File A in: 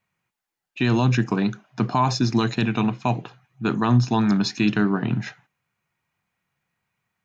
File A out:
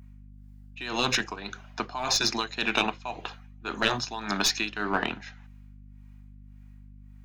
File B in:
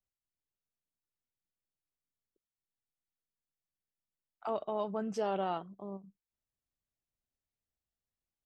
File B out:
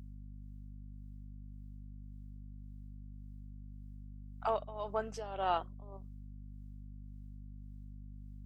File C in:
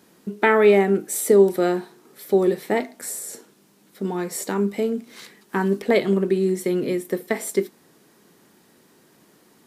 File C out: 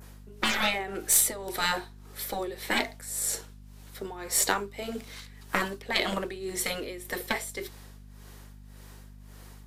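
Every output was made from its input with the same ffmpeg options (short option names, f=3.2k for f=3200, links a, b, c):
-filter_complex "[0:a]adynamicequalizer=threshold=0.00794:dfrequency=3800:dqfactor=1.1:tfrequency=3800:tqfactor=1.1:attack=5:release=100:ratio=0.375:range=2:mode=boostabove:tftype=bell,highpass=550,asplit=2[a][b];[b]asoftclip=type=hard:threshold=-21dB,volume=-11dB[c];[a][c]amix=inputs=2:normalize=0,tremolo=f=1.8:d=0.84,aeval=exprs='0.531*(cos(1*acos(clip(val(0)/0.531,-1,1)))-cos(1*PI/2))+0.0531*(cos(2*acos(clip(val(0)/0.531,-1,1)))-cos(2*PI/2))+0.00422*(cos(3*acos(clip(val(0)/0.531,-1,1)))-cos(3*PI/2))+0.0335*(cos(4*acos(clip(val(0)/0.531,-1,1)))-cos(4*PI/2))+0.0299*(cos(7*acos(clip(val(0)/0.531,-1,1)))-cos(7*PI/2))':c=same,afftfilt=real='re*lt(hypot(re,im),0.141)':imag='im*lt(hypot(re,im),0.141)':win_size=1024:overlap=0.75,aeval=exprs='val(0)+0.00178*(sin(2*PI*50*n/s)+sin(2*PI*2*50*n/s)/2+sin(2*PI*3*50*n/s)/3+sin(2*PI*4*50*n/s)/4+sin(2*PI*5*50*n/s)/5)':c=same,volume=8dB"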